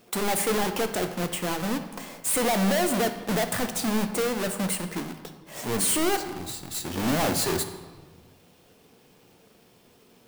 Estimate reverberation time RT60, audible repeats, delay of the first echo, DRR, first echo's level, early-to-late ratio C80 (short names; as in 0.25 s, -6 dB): 1.4 s, none, none, 7.0 dB, none, 11.5 dB